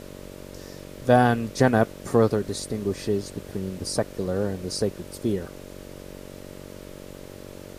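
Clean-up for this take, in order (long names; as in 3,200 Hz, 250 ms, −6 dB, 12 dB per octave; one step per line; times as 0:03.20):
hum removal 47 Hz, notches 13
noise reduction from a noise print 27 dB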